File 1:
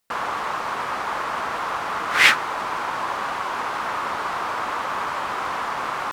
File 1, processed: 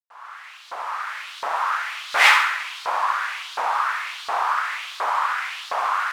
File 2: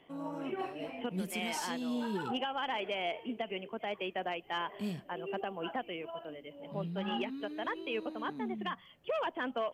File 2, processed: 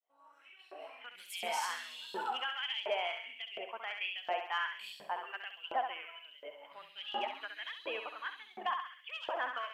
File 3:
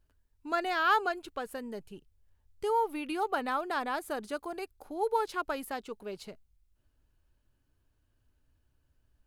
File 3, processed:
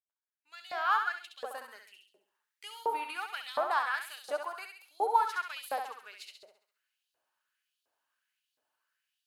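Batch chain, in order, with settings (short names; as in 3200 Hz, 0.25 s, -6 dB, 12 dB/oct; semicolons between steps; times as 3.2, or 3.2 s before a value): opening faded in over 1.73 s; flutter echo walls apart 11.5 m, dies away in 0.7 s; LFO high-pass saw up 1.4 Hz 560–4100 Hz; gain -2 dB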